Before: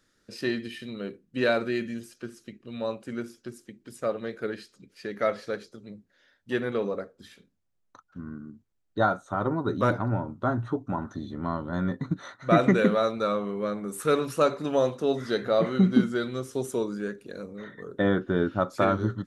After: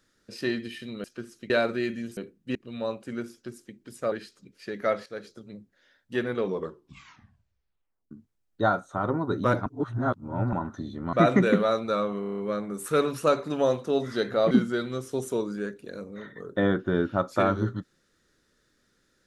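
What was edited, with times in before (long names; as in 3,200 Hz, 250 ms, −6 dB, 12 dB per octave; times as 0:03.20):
0:01.04–0:01.42: swap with 0:02.09–0:02.55
0:04.12–0:04.49: remove
0:05.43–0:05.68: fade in, from −13 dB
0:06.77: tape stop 1.71 s
0:10.03–0:10.90: reverse
0:11.50–0:12.45: remove
0:13.52: stutter 0.03 s, 7 plays
0:15.65–0:15.93: remove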